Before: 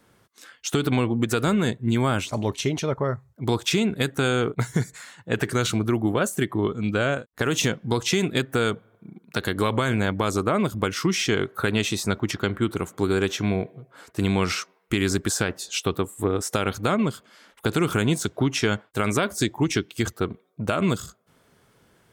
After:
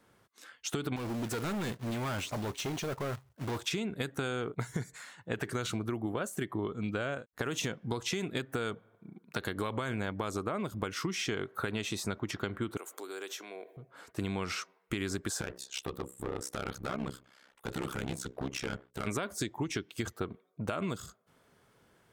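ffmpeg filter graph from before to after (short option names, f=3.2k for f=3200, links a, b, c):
-filter_complex "[0:a]asettb=1/sr,asplit=3[a][b][c];[a]atrim=end=0.964[d];[b]atrim=start=0.96:end=3.61,asetpts=PTS-STARTPTS,afade=t=in:d=0.004:c=qsin,afade=t=out:st=2.646:d=0.004:c=qsin,acrusher=bits=2:mode=log:mix=0:aa=0.000001,volume=25dB,asoftclip=hard,volume=-25dB[e];[c]atrim=start=3.606[f];[d][e]acrossfade=d=0.004:c1=hsin:c2=qsin[g];[g][f]acrossfade=d=0.004:c1=qsin:c2=hsin,asettb=1/sr,asplit=3[h][i][j];[h]atrim=end=12.774[k];[i]atrim=start=12.77:end=13.77,asetpts=PTS-STARTPTS,afade=t=in:d=0.004:c=qsin,afade=t=out:st=0.996:d=0.004:c=qsin,aemphasis=mode=production:type=50kf,acompressor=threshold=-33dB:ratio=3:attack=3.2:release=140:knee=1:detection=peak,highpass=f=350:w=0.5412,highpass=f=350:w=1.3066[l];[j]atrim=start=13.766[m];[k][l]acrossfade=d=0.004:c1=hsin:c2=qsin[n];[n][m]acrossfade=d=0.004:c1=qsin:c2=hsin,asettb=1/sr,asplit=3[o][p][q];[o]atrim=end=15.414[r];[p]atrim=start=15.41:end=19.07,asetpts=PTS-STARTPTS,afade=t=in:d=0.004:c=qsin,afade=t=out:st=3.656:d=0.004:c=qsin,asoftclip=type=hard:threshold=-21dB,bandreject=f=60:t=h:w=6,bandreject=f=120:t=h:w=6,bandreject=f=180:t=h:w=6,bandreject=f=240:t=h:w=6,bandreject=f=300:t=h:w=6,bandreject=f=360:t=h:w=6,bandreject=f=420:t=h:w=6,bandreject=f=480:t=h:w=6,bandreject=f=540:t=h:w=6,tremolo=f=66:d=0.947[s];[q]atrim=start=19.066[t];[r][s]acrossfade=d=0.004:c1=hsin:c2=qsin[u];[u][t]acrossfade=d=0.004:c1=qsin:c2=hsin,equalizer=f=960:t=o:w=3:g=3,acompressor=threshold=-23dB:ratio=6,volume=-7.5dB"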